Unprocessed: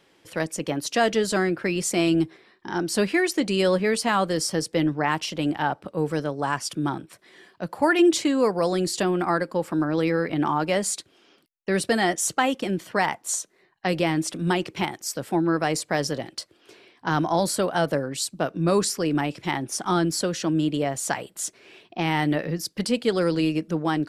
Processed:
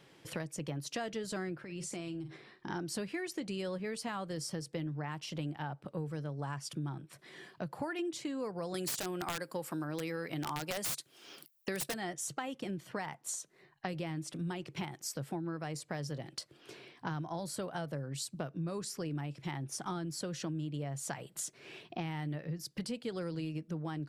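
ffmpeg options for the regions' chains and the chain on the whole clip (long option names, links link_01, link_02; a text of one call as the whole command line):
ffmpeg -i in.wav -filter_complex "[0:a]asettb=1/sr,asplit=3[link_01][link_02][link_03];[link_01]atrim=end=1.624[link_04];[link_02]atrim=start=1.62:end=2.7,asetpts=PTS-STARTPTS,afade=type=in:duration=0.004:curve=qsin,afade=type=out:start_time=1.076:duration=0.004:curve=qsin,lowpass=frequency=11000:width=0.5412,lowpass=frequency=11000:width=1.3066,asplit=2[link_05][link_06];[link_06]adelay=46,volume=-13.5dB[link_07];[link_05][link_07]amix=inputs=2:normalize=0,atrim=end_sample=47628,acompressor=threshold=-37dB:ratio=4:attack=3.2:release=140:knee=1:detection=peak[link_08];[link_03]atrim=start=2.696[link_09];[link_04][link_08]acrossfade=duration=0.004:curve1=hsin:curve2=qsin[link_10];[link_10][link_09]acrossfade=duration=0.004:curve1=qsin:curve2=hsin,asettb=1/sr,asplit=3[link_11][link_12][link_13];[link_11]atrim=end=8.744[link_14];[link_12]atrim=start=8.74:end=11.94,asetpts=PTS-STARTPTS,afade=type=in:duration=0.004:curve=qsin,afade=type=out:start_time=3.196:duration=0.004:curve=qsin,aemphasis=mode=production:type=bsi,acontrast=54,aeval=exprs='(mod(2.82*val(0)+1,2)-1)/2.82':channel_layout=same[link_15];[link_13]atrim=start=11.936[link_16];[link_14][link_15]acrossfade=duration=0.004:curve1=hsin:curve2=qsin[link_17];[link_17][link_16]acrossfade=duration=0.004:curve1=qsin:curve2=hsin,equalizer=frequency=140:width=3.1:gain=13,acompressor=threshold=-36dB:ratio=5,volume=-1.5dB" out.wav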